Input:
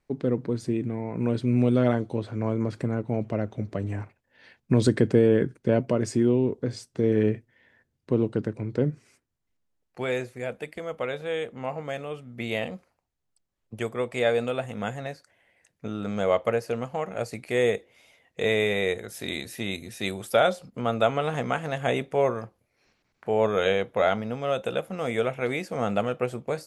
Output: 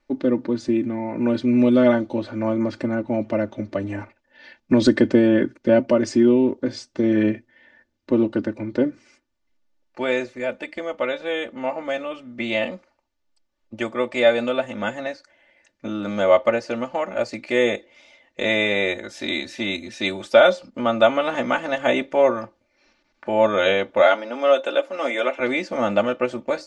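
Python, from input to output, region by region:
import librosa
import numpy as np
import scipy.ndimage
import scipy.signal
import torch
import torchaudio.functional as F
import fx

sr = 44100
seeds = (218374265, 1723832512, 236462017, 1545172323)

y = fx.chain(x, sr, fx.highpass(hz=290.0, slope=24),
    fx.comb(ms=7.1, depth=0.45), at=(24.02, 25.4))
y = scipy.signal.sosfilt(scipy.signal.butter(4, 6300.0, 'lowpass', fs=sr, output='sos'), y)
y = fx.peak_eq(y, sr, hz=69.0, db=-8.5, octaves=2.1)
y = y + 0.88 * np.pad(y, (int(3.4 * sr / 1000.0), 0))[:len(y)]
y = y * librosa.db_to_amplitude(4.5)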